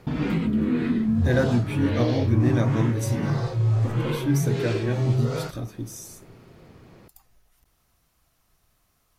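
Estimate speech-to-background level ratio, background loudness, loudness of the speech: -2.5 dB, -25.0 LUFS, -27.5 LUFS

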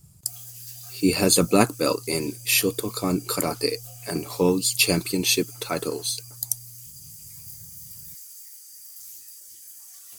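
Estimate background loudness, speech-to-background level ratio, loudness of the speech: -40.5 LUFS, 17.0 dB, -23.5 LUFS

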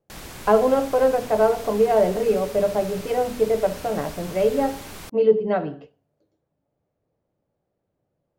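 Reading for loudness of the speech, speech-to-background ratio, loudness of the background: -21.5 LUFS, 16.5 dB, -38.0 LUFS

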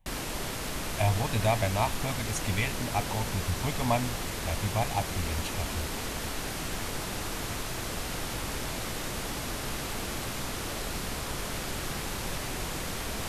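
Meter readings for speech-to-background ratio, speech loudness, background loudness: 2.0 dB, -32.0 LUFS, -34.0 LUFS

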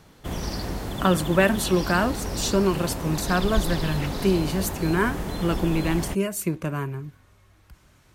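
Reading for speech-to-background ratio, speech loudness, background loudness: 6.0 dB, -25.0 LUFS, -31.0 LUFS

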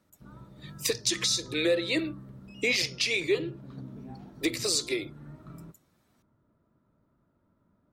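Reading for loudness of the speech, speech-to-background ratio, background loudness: -28.0 LUFS, 18.0 dB, -46.0 LUFS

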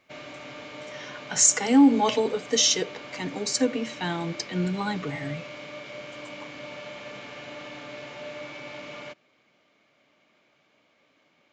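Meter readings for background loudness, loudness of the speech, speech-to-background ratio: -39.5 LUFS, -23.5 LUFS, 16.0 dB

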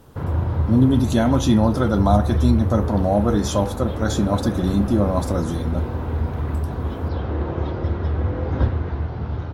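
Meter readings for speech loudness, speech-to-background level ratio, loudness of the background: -20.5 LUFS, 4.5 dB, -25.0 LUFS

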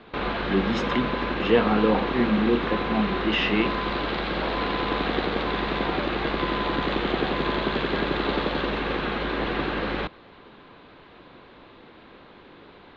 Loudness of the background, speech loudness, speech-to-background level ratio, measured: -26.5 LUFS, -25.0 LUFS, 1.5 dB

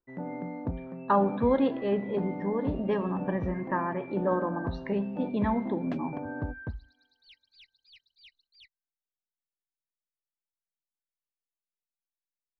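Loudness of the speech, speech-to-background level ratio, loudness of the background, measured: -29.5 LUFS, 9.0 dB, -38.5 LUFS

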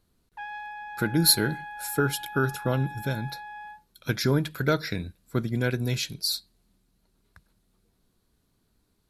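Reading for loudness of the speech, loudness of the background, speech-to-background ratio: -27.0 LUFS, -39.5 LUFS, 12.5 dB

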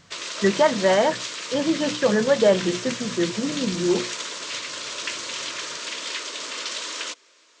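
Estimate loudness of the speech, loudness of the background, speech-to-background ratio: -22.5 LUFS, -30.0 LUFS, 7.5 dB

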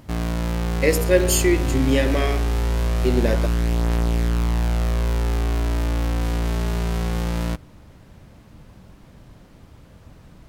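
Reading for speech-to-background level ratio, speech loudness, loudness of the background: 2.5 dB, -21.5 LUFS, -24.0 LUFS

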